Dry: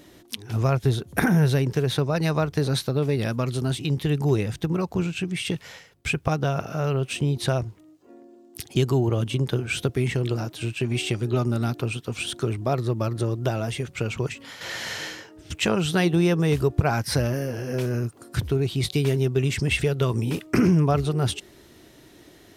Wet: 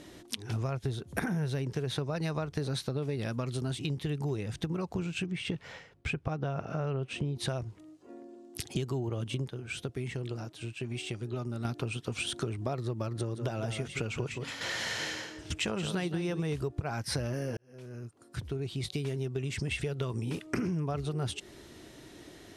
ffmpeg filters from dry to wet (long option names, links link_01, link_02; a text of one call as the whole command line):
ffmpeg -i in.wav -filter_complex "[0:a]asettb=1/sr,asplit=3[link_01][link_02][link_03];[link_01]atrim=end=5.264[link_04];[link_02]atrim=start=5.26:end=7.36,asetpts=PTS-STARTPTS,afade=type=in:duration=0.004:curve=qsin,afade=type=out:start_time=2.096:duration=0.004:curve=qsin,lowpass=frequency=2000:poles=1[link_05];[link_03]atrim=start=7.356[link_06];[link_04][link_05]acrossfade=duration=0.004:curve1=hsin:curve2=qsin[link_07];[link_07][link_06]acrossfade=duration=0.004:curve1=qsin:curve2=hsin,asettb=1/sr,asplit=3[link_08][link_09][link_10];[link_08]atrim=end=13.164[link_11];[link_09]atrim=start=13.16:end=16.43,asetpts=PTS-STARTPTS,afade=type=in:duration=0.004:curve=qsin,afade=type=out:start_time=3.266:duration=0.004:curve=qsin,aecho=1:1:171:0.335,atrim=end_sample=144207[link_12];[link_10]atrim=start=16.426[link_13];[link_11][link_12]acrossfade=duration=0.004:curve1=hsin:curve2=qsin[link_14];[link_14][link_13]acrossfade=duration=0.004:curve1=qsin:curve2=hsin,asplit=4[link_15][link_16][link_17][link_18];[link_15]atrim=end=9.492[link_19];[link_16]atrim=start=9.488:end=11.652,asetpts=PTS-STARTPTS,volume=-10.5dB[link_20];[link_17]atrim=start=11.648:end=17.57,asetpts=PTS-STARTPTS,afade=type=out:start_time=5.918:duration=0.004:curve=hsin[link_21];[link_18]atrim=start=17.57,asetpts=PTS-STARTPTS,afade=type=in:duration=2.86[link_22];[link_19][link_20]acrossfade=duration=0.004:curve1=hsin:curve2=hsin[link_23];[link_21][link_22]concat=n=2:v=0:a=1[link_24];[link_23][link_24]acrossfade=duration=0.004:curve1=hsin:curve2=hsin,lowpass=frequency=11000:width=0.5412,lowpass=frequency=11000:width=1.3066,acompressor=threshold=-31dB:ratio=5" out.wav